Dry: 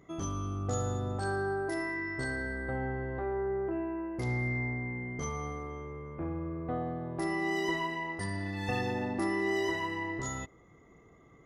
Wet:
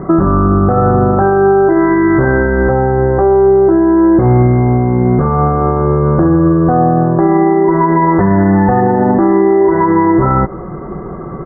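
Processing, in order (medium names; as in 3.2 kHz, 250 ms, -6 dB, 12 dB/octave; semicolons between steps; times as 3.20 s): steep low-pass 1.7 kHz 72 dB/octave; comb 5.4 ms, depth 55%; compression, threshold -39 dBFS, peak gain reduction 12.5 dB; loudness maximiser +35.5 dB; trim -1.5 dB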